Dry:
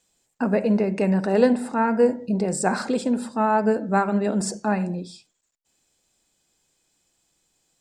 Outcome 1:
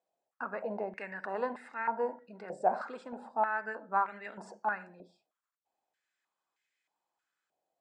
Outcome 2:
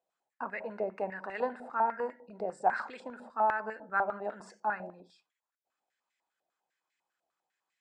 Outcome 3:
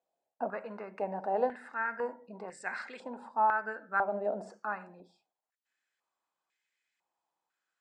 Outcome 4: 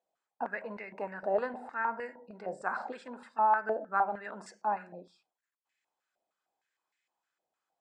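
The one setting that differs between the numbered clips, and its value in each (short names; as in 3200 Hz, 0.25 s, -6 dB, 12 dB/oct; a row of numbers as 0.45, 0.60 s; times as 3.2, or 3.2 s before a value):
stepped band-pass, rate: 3.2, 10, 2, 6.5 Hz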